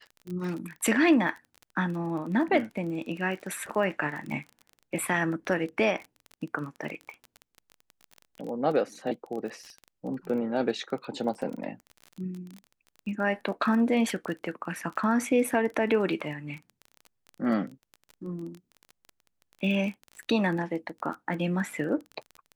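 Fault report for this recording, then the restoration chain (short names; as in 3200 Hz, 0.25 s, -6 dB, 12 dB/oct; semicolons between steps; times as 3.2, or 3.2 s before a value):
crackle 22/s -34 dBFS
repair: de-click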